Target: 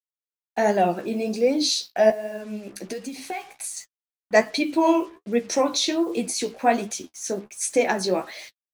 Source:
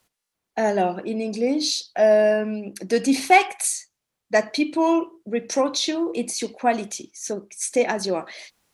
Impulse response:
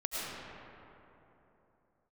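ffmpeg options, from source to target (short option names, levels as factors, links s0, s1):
-filter_complex "[0:a]asettb=1/sr,asplit=3[s0][s1][s2];[s0]atrim=end=2.104[s3];[s1]atrim=start=2.1:end=3.77,asetpts=PTS-STARTPTS,afade=t=in:d=0.004:c=qsin,afade=t=out:st=1.666:d=0.004:c=qsin,acompressor=threshold=0.0282:ratio=6[s4];[s2]atrim=start=3.766[s5];[s3][s4]acrossfade=d=0.004:c1=hsin:c2=qsin[s6];[s6][s5]acrossfade=d=0.004:c1=qsin:c2=hsin,acrusher=bits=7:mix=0:aa=0.5,flanger=delay=8.1:depth=9.7:regen=33:speed=1.3:shape=triangular,volume=1.68"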